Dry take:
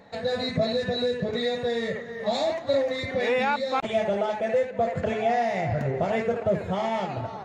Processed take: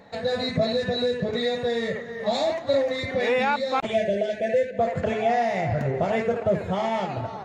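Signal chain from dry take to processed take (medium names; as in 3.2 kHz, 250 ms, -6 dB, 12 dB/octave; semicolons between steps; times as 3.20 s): time-frequency box 3.95–4.79 s, 720–1500 Hz -26 dB; trim +1.5 dB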